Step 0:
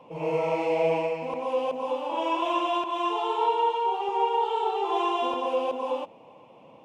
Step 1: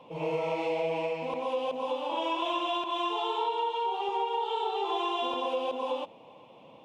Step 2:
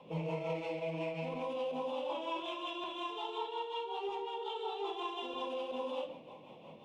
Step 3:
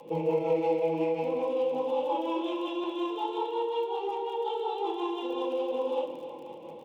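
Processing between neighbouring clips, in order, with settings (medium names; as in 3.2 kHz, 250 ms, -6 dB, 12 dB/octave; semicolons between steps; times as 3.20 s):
peaking EQ 3.6 kHz +9 dB 0.53 oct; compression, threshold -25 dBFS, peak gain reduction 6 dB; trim -1.5 dB
peak limiter -30 dBFS, peak gain reduction 10.5 dB; rotary cabinet horn 5.5 Hz; reverberation RT60 0.60 s, pre-delay 5 ms, DRR 3 dB
small resonant body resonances 340/480/830 Hz, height 16 dB, ringing for 75 ms; crackle 37 per s -45 dBFS; feedback delay 265 ms, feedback 59%, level -13 dB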